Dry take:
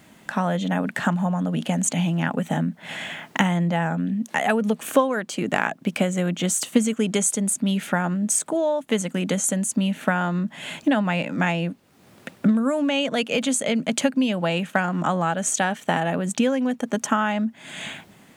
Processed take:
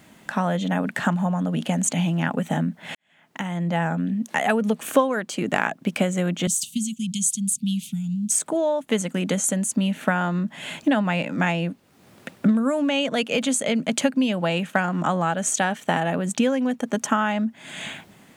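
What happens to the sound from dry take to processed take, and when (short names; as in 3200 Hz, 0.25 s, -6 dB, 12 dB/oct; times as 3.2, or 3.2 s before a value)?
2.95–3.77 fade in quadratic
6.47–8.31 inverse Chebyshev band-stop 360–1800 Hz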